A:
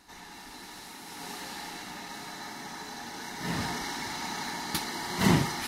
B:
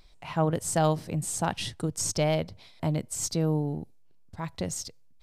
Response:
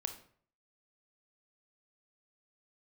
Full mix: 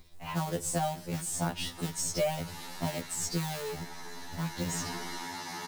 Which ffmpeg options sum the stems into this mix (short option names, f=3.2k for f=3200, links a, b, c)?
-filter_complex "[0:a]adelay=1250,volume=-2.5dB[a];[1:a]tiltshelf=f=680:g=3,acrusher=bits=4:mode=log:mix=0:aa=0.000001,volume=1dB,asplit=2[b][c];[c]volume=-11dB[d];[2:a]atrim=start_sample=2205[e];[d][e]afir=irnorm=-1:irlink=0[f];[a][b][f]amix=inputs=3:normalize=0,acrossover=split=140|550[g][h][i];[g]acompressor=threshold=-43dB:ratio=4[j];[h]acompressor=threshold=-34dB:ratio=4[k];[i]acompressor=threshold=-29dB:ratio=4[l];[j][k][l]amix=inputs=3:normalize=0,highshelf=f=11k:g=3.5,afftfilt=real='re*2*eq(mod(b,4),0)':imag='im*2*eq(mod(b,4),0)':win_size=2048:overlap=0.75"